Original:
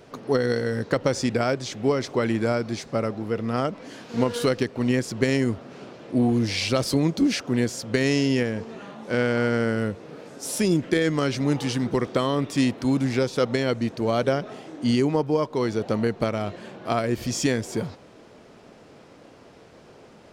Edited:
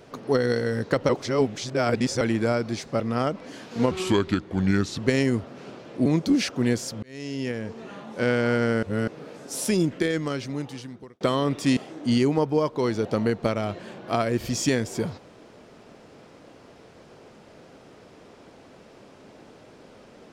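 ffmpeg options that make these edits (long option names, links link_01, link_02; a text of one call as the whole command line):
ffmpeg -i in.wav -filter_complex "[0:a]asplit=12[link_01][link_02][link_03][link_04][link_05][link_06][link_07][link_08][link_09][link_10][link_11][link_12];[link_01]atrim=end=1.092[link_13];[link_02]atrim=start=1.088:end=2.212,asetpts=PTS-STARTPTS,areverse[link_14];[link_03]atrim=start=2.208:end=3.002[link_15];[link_04]atrim=start=3.378:end=4.294[link_16];[link_05]atrim=start=4.29:end=5.13,asetpts=PTS-STARTPTS,asetrate=34398,aresample=44100,atrim=end_sample=47492,asetpts=PTS-STARTPTS[link_17];[link_06]atrim=start=5.126:end=6.202[link_18];[link_07]atrim=start=6.968:end=7.94,asetpts=PTS-STARTPTS,afade=type=out:start_time=0.968:duration=0.004:curve=hsin[link_19];[link_08]atrim=start=7.94:end=9.742,asetpts=PTS-STARTPTS,afade=type=in:duration=0.94[link_20];[link_09]atrim=start=9.738:end=9.992,asetpts=PTS-STARTPTS,areverse[link_21];[link_10]atrim=start=9.988:end=12.12,asetpts=PTS-STARTPTS,afade=type=out:start_time=0.522:duration=1.61[link_22];[link_11]atrim=start=12.12:end=12.682,asetpts=PTS-STARTPTS,afade=type=in:duration=0.004:curve=hsin[link_23];[link_12]atrim=start=14.538[link_24];[link_13][link_14]acrossfade=duration=0.004:curve1=hsin:curve2=hsin[link_25];[link_25][link_15]acrossfade=duration=0.004:curve1=hsin:curve2=hsin[link_26];[link_26][link_16]acrossfade=duration=0.004:curve1=hsin:curve2=hsin[link_27];[link_27][link_17]acrossfade=duration=0.004:curve1=hsin:curve2=hsin[link_28];[link_28][link_18]acrossfade=duration=0.004:curve1=hsin:curve2=hsin[link_29];[link_19][link_20]concat=n=2:v=0:a=1[link_30];[link_29][link_30]acrossfade=duration=0.004:curve1=hsin:curve2=hsin[link_31];[link_31][link_21]acrossfade=duration=0.004:curve1=hsin:curve2=hsin[link_32];[link_22][link_23]concat=n=2:v=0:a=1[link_33];[link_32][link_33]acrossfade=duration=0.004:curve1=hsin:curve2=hsin[link_34];[link_34][link_24]acrossfade=duration=0.004:curve1=hsin:curve2=hsin" out.wav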